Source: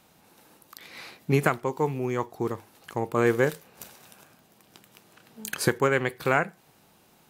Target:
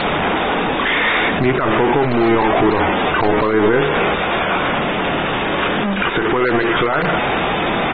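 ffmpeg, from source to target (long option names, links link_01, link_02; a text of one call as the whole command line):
ffmpeg -i in.wav -filter_complex "[0:a]aeval=exprs='val(0)+0.5*0.1*sgn(val(0))':channel_layout=same,acrossover=split=3400[link_01][link_02];[link_02]acompressor=threshold=-35dB:ratio=4:attack=1:release=60[link_03];[link_01][link_03]amix=inputs=2:normalize=0,highshelf=frequency=9100:gain=-3.5,afftfilt=real='re*gte(hypot(re,im),0.0126)':imag='im*gte(hypot(re,im),0.0126)':win_size=1024:overlap=0.75,asetrate=40517,aresample=44100,equalizer=frequency=110:width=0.93:gain=-10.5,aecho=1:1:217|434:0.0708|0.0262,alimiter=level_in=17.5dB:limit=-1dB:release=50:level=0:latency=1,volume=-6.5dB" -ar 32000 -c:a aac -b:a 16k out.aac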